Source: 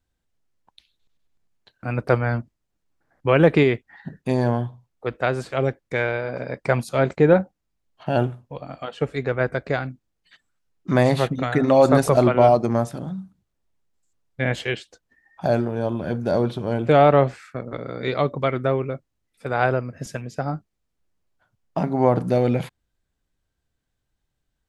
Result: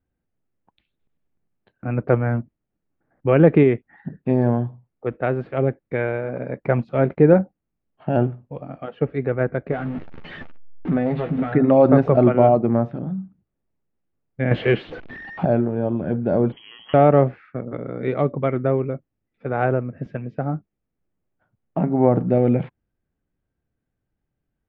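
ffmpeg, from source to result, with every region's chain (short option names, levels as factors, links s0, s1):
-filter_complex "[0:a]asettb=1/sr,asplit=3[s0][s1][s2];[s0]atrim=end=9.714[s3];[s1]atrim=start=9.71:end=11.52,asetpts=PTS-STARTPTS,afade=t=in:d=0.004:c=qsin,afade=t=out:st=1.806:d=0.004:c=qsin,aeval=exprs='val(0)+0.5*0.0501*sgn(val(0))':c=same,acompressor=threshold=0.0562:ratio=2:attack=3.2:release=140:knee=1:detection=peak,asplit=2[s4][s5];[s5]adelay=12,volume=0.501[s6];[s4][s6]amix=inputs=2:normalize=0,atrim=end_sample=79821[s7];[s2]atrim=start=11.516[s8];[s3][s7]acrossfade=d=0.004:c1=hsin:c2=qsin[s9];[s9][s8]acrossfade=d=0.004:c1=qsin:c2=hsin,asettb=1/sr,asplit=3[s10][s11][s12];[s10]atrim=end=14.514[s13];[s11]atrim=start=14.51:end=15.45,asetpts=PTS-STARTPTS,afade=t=in:d=0.004:c=qsin,afade=t=out:st=0.936:d=0.004:c=qsin,aeval=exprs='val(0)+0.5*0.0211*sgn(val(0))':c=same,equalizer=f=4300:w=4.6:g=3,acontrast=69[s14];[s12]atrim=start=15.446[s15];[s13][s14]acrossfade=d=0.004:c1=hsin:c2=qsin[s16];[s16][s15]acrossfade=d=0.004:c1=qsin:c2=hsin,asettb=1/sr,asplit=3[s17][s18][s19];[s17]atrim=end=16.524[s20];[s18]atrim=start=16.52:end=16.94,asetpts=PTS-STARTPTS,afade=t=in:d=0.004:c=qsin,afade=t=out:st=0.416:d=0.004:c=qsin,tiltshelf=f=1500:g=-6.5,acompressor=threshold=0.0251:ratio=2.5:attack=3.2:release=140:knee=1:detection=peak,lowpass=f=2900:t=q:w=0.5098,lowpass=f=2900:t=q:w=0.6013,lowpass=f=2900:t=q:w=0.9,lowpass=f=2900:t=q:w=2.563,afreqshift=-3400[s21];[s19]atrim=start=16.936[s22];[s20][s21]acrossfade=d=0.004:c1=hsin:c2=qsin[s23];[s23][s22]acrossfade=d=0.004:c1=qsin:c2=hsin,lowpass=f=2700:w=0.5412,lowpass=f=2700:w=1.3066,equalizer=f=230:w=0.37:g=9.5,bandreject=f=1000:w=17,volume=0.531"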